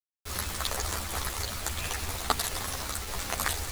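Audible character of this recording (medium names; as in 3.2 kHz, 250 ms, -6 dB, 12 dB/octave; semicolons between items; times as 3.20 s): a quantiser's noise floor 6-bit, dither none; a shimmering, thickened sound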